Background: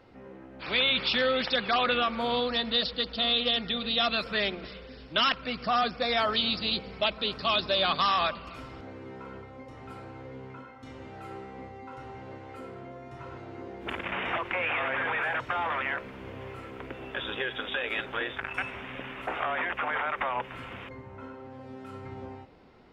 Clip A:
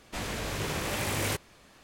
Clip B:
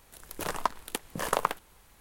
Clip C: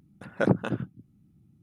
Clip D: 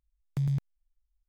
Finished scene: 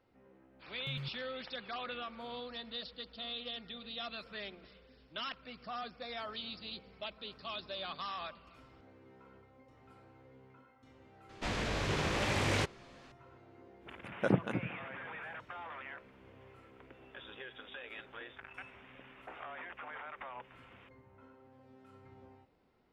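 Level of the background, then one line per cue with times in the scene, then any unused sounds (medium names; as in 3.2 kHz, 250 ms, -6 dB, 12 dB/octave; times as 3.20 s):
background -16 dB
0.50 s: add D -14.5 dB
11.29 s: add A -0.5 dB + low-pass 5.1 kHz
13.83 s: add C -6.5 dB + filtered feedback delay 200 ms, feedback 63%, level -21.5 dB
not used: B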